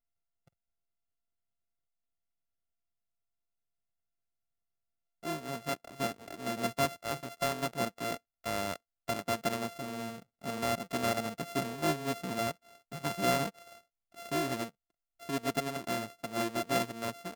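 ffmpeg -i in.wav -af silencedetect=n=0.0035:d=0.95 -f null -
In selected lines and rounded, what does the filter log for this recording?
silence_start: 0.00
silence_end: 5.23 | silence_duration: 5.23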